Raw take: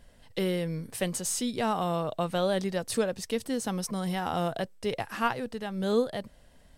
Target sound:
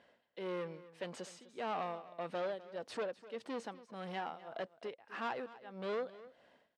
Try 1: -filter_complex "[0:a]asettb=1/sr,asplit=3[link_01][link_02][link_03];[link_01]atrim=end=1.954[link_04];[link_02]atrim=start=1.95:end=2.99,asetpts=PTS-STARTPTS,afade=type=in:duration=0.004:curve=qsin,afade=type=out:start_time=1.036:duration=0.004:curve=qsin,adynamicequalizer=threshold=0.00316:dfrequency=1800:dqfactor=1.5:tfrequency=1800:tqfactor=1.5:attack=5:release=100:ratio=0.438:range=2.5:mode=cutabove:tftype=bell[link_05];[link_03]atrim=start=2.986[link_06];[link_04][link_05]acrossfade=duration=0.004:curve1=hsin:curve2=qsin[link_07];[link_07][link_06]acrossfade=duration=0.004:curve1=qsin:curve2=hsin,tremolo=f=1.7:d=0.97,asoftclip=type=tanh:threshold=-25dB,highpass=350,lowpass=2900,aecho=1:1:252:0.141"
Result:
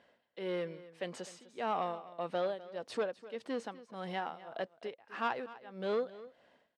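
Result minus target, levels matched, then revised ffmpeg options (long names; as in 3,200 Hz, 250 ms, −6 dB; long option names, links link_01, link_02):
soft clipping: distortion −6 dB
-filter_complex "[0:a]asettb=1/sr,asplit=3[link_01][link_02][link_03];[link_01]atrim=end=1.954[link_04];[link_02]atrim=start=1.95:end=2.99,asetpts=PTS-STARTPTS,afade=type=in:duration=0.004:curve=qsin,afade=type=out:start_time=1.036:duration=0.004:curve=qsin,adynamicequalizer=threshold=0.00316:dfrequency=1800:dqfactor=1.5:tfrequency=1800:tqfactor=1.5:attack=5:release=100:ratio=0.438:range=2.5:mode=cutabove:tftype=bell[link_05];[link_03]atrim=start=2.986[link_06];[link_04][link_05]acrossfade=duration=0.004:curve1=hsin:curve2=qsin[link_07];[link_07][link_06]acrossfade=duration=0.004:curve1=qsin:curve2=hsin,tremolo=f=1.7:d=0.97,asoftclip=type=tanh:threshold=-32.5dB,highpass=350,lowpass=2900,aecho=1:1:252:0.141"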